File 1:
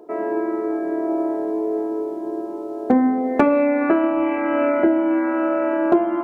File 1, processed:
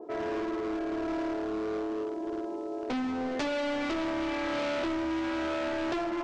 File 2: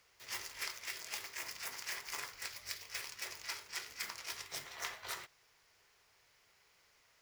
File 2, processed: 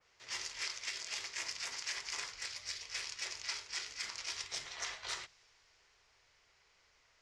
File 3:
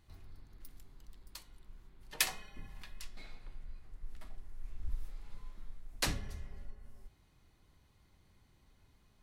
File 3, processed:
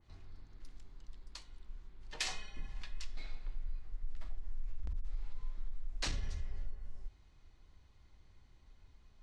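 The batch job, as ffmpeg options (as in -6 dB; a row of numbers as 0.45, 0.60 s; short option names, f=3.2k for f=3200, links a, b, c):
-af "bandreject=f=50:t=h:w=6,bandreject=f=100:t=h:w=6,bandreject=f=150:t=h:w=6,bandreject=f=200:t=h:w=6,asubboost=boost=2.5:cutoff=85,volume=23dB,asoftclip=hard,volume=-23dB,alimiter=level_in=5.5dB:limit=-24dB:level=0:latency=1:release=46,volume=-5.5dB,lowpass=f=7.2k:w=0.5412,lowpass=f=7.2k:w=1.3066,adynamicequalizer=threshold=0.00224:dfrequency=2400:dqfactor=0.7:tfrequency=2400:tqfactor=0.7:attack=5:release=100:ratio=0.375:range=3.5:mode=boostabove:tftype=highshelf"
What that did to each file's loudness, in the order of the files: -11.5, +2.5, -4.5 LU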